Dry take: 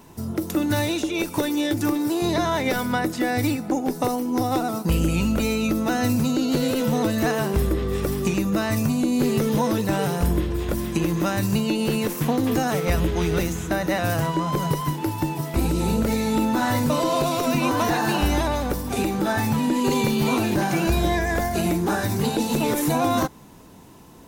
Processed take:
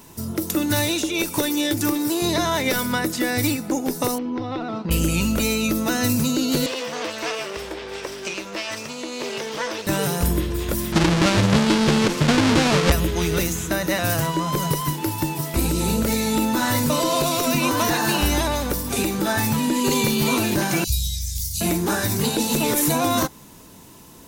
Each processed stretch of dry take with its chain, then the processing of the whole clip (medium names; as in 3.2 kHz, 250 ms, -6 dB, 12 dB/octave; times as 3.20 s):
4.18–4.91 s: low-pass 3.5 kHz 24 dB/octave + compression 4:1, threshold -23 dBFS
6.66–9.87 s: comb filter that takes the minimum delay 0.36 ms + three-band isolator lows -22 dB, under 410 Hz, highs -23 dB, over 6.4 kHz
10.92–12.92 s: square wave that keeps the level + low-pass 5.6 kHz
20.84–21.61 s: inverse Chebyshev band-stop 340–1600 Hz, stop band 60 dB + peaking EQ 1.3 kHz +13.5 dB 2.1 oct
whole clip: treble shelf 2.9 kHz +9 dB; band-stop 760 Hz, Q 12